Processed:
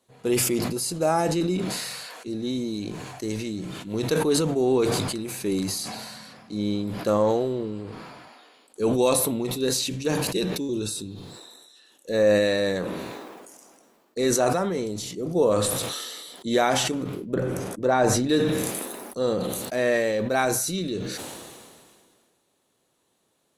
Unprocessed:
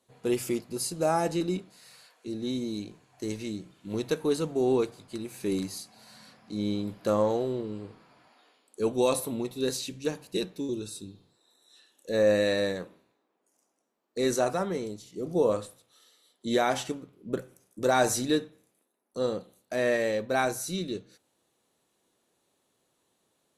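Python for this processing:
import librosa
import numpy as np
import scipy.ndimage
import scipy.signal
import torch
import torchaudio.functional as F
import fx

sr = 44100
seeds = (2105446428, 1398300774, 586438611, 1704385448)

y = fx.lowpass(x, sr, hz=1400.0, slope=6, at=(17.34, 18.29))
y = fx.sustainer(y, sr, db_per_s=29.0)
y = F.gain(torch.from_numpy(y), 3.0).numpy()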